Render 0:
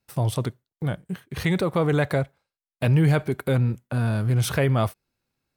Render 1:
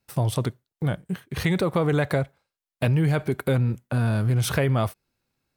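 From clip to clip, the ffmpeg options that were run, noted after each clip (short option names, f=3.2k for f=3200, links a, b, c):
-af "acompressor=threshold=-20dB:ratio=6,volume=2dB"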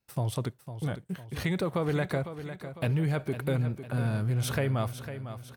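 -af "aecho=1:1:503|1006|1509|2012|2515:0.282|0.135|0.0649|0.0312|0.015,volume=-6.5dB"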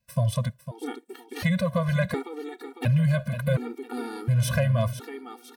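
-af "volume=19dB,asoftclip=hard,volume=-19dB,afftfilt=real='re*gt(sin(2*PI*0.7*pts/sr)*(1-2*mod(floor(b*sr/1024/240),2)),0)':imag='im*gt(sin(2*PI*0.7*pts/sr)*(1-2*mod(floor(b*sr/1024/240),2)),0)':win_size=1024:overlap=0.75,volume=6.5dB"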